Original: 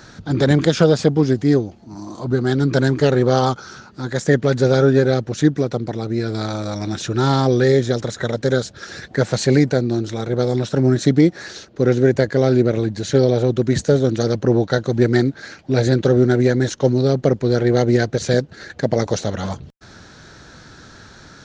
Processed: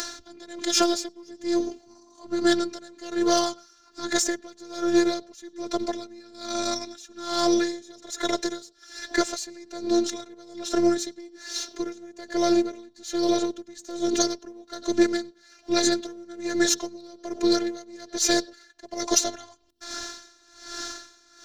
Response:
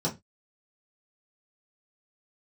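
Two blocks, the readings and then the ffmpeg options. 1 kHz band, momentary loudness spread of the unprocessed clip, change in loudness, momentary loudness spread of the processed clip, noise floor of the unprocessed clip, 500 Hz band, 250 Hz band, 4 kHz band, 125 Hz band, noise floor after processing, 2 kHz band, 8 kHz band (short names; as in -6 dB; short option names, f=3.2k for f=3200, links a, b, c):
-5.0 dB, 10 LU, -8.0 dB, 17 LU, -44 dBFS, -11.0 dB, -7.5 dB, +0.5 dB, -31.5 dB, -58 dBFS, -7.5 dB, +5.5 dB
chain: -filter_complex "[0:a]aeval=exprs='if(lt(val(0),0),0.708*val(0),val(0))':c=same,bass=f=250:g=-10,treble=f=4k:g=11,acompressor=mode=upward:threshold=-28dB:ratio=2.5,asplit=2[a][b];[b]equalizer=f=3.2k:w=2:g=9[c];[1:a]atrim=start_sample=2205,adelay=93[d];[c][d]afir=irnorm=-1:irlink=0,volume=-30dB[e];[a][e]amix=inputs=2:normalize=0,acrossover=split=180|5800[f][g][h];[f]acompressor=threshold=-34dB:ratio=4[i];[g]acompressor=threshold=-19dB:ratio=4[j];[i][j][h]amix=inputs=3:normalize=0,afftfilt=real='hypot(re,im)*cos(PI*b)':imag='0':win_size=512:overlap=0.75,aeval=exprs='val(0)*pow(10,-25*(0.5-0.5*cos(2*PI*1.2*n/s))/20)':c=same,volume=6dB"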